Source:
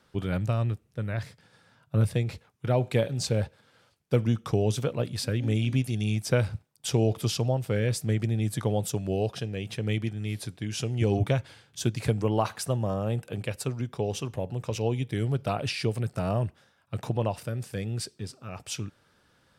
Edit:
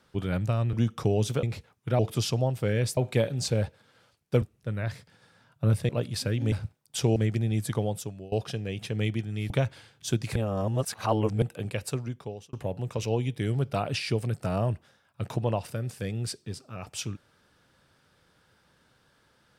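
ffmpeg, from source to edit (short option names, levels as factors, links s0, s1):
-filter_complex "[0:a]asplit=14[s0][s1][s2][s3][s4][s5][s6][s7][s8][s9][s10][s11][s12][s13];[s0]atrim=end=0.732[s14];[s1]atrim=start=4.208:end=4.912[s15];[s2]atrim=start=2.198:end=2.762[s16];[s3]atrim=start=7.058:end=8.042[s17];[s4]atrim=start=2.758:end=4.212[s18];[s5]atrim=start=0.728:end=2.202[s19];[s6]atrim=start=4.908:end=5.542[s20];[s7]atrim=start=6.418:end=7.062[s21];[s8]atrim=start=8.038:end=9.2,asetpts=PTS-STARTPTS,afade=t=out:st=0.562:d=0.6:silence=0.0841395[s22];[s9]atrim=start=9.2:end=10.382,asetpts=PTS-STARTPTS,afade=t=in:d=0.004:c=hsin:silence=0.0841395[s23];[s10]atrim=start=11.228:end=12.092[s24];[s11]atrim=start=12.088:end=13.152,asetpts=PTS-STARTPTS,areverse[s25];[s12]atrim=start=13.148:end=14.26,asetpts=PTS-STARTPTS,afade=t=out:st=0.512:d=0.6[s26];[s13]atrim=start=14.26,asetpts=PTS-STARTPTS,afade=t=in:d=0.004:c=hsin[s27];[s14][s15]acrossfade=d=0.004:c1=hsin:c2=hsin[s28];[s28][s16]acrossfade=d=0.004:c1=hsin:c2=hsin[s29];[s29][s17]acrossfade=d=0.004:c1=hsin:c2=hsin[s30];[s30][s18]acrossfade=d=0.004:c1=hsin:c2=hsin[s31];[s31][s19]acrossfade=d=0.004:c1=hsin:c2=hsin[s32];[s32][s20]acrossfade=d=0.004:c1=hsin:c2=hsin[s33];[s33][s21]acrossfade=d=0.004:c1=hsin:c2=hsin[s34];[s22][s23]concat=n=2:v=0:a=1[s35];[s34][s35]acrossfade=d=0.004:c1=hsin:c2=hsin[s36];[s36][s24]acrossfade=d=0.004:c1=hsin:c2=hsin[s37];[s37][s25]acrossfade=d=0.004:c1=hsin:c2=hsin[s38];[s26][s27]concat=n=2:v=0:a=1[s39];[s38][s39]acrossfade=d=0.004:c1=hsin:c2=hsin"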